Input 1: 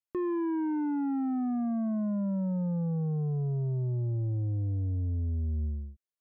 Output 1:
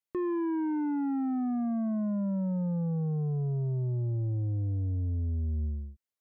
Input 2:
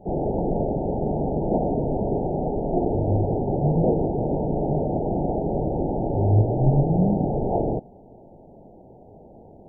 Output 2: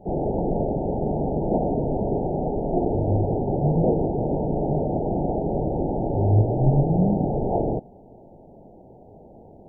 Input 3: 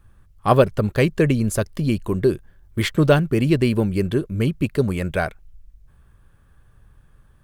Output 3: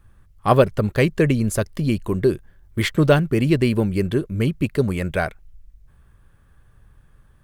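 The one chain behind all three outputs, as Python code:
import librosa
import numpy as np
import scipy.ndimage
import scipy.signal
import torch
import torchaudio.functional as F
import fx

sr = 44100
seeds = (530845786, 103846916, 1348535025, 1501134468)

y = fx.peak_eq(x, sr, hz=2000.0, db=2.5, octaves=0.27)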